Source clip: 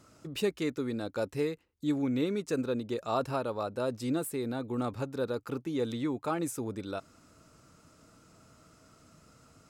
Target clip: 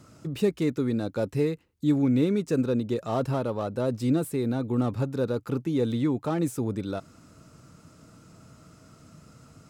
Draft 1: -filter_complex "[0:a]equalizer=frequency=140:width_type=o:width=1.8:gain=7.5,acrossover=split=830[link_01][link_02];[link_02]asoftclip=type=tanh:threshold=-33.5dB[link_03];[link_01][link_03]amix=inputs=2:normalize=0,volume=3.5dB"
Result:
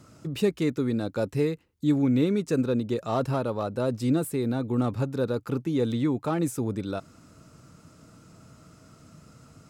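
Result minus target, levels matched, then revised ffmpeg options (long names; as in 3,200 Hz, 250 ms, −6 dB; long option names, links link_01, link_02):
soft clipping: distortion −6 dB
-filter_complex "[0:a]equalizer=frequency=140:width_type=o:width=1.8:gain=7.5,acrossover=split=830[link_01][link_02];[link_02]asoftclip=type=tanh:threshold=-40dB[link_03];[link_01][link_03]amix=inputs=2:normalize=0,volume=3.5dB"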